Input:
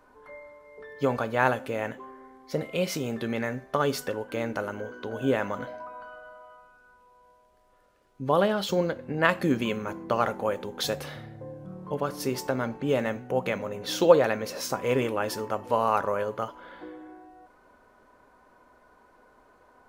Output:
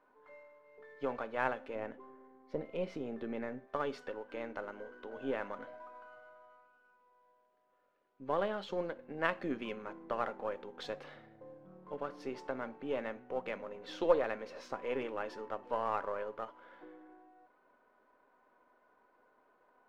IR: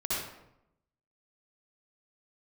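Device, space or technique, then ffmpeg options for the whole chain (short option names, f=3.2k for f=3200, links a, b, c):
crystal radio: -filter_complex "[0:a]highpass=250,lowpass=2.9k,aeval=exprs='if(lt(val(0),0),0.708*val(0),val(0))':c=same,asettb=1/sr,asplit=3[a][b][c];[a]atrim=end=1.754[d];[b]atrim=start=1.75:end=3.68,asetpts=PTS-STARTPTS,afade=t=in:d=0.004:c=qsin,afade=t=out:st=1.926:d=0.004:c=qsin,tiltshelf=f=760:g=5.5[e];[c]atrim=start=3.676[f];[d][e]acrossfade=d=0.004:c1=hsin:c2=qsin[g];[g][f]acrossfade=d=0.004:c1=qsin:c2=hsin,volume=-9dB"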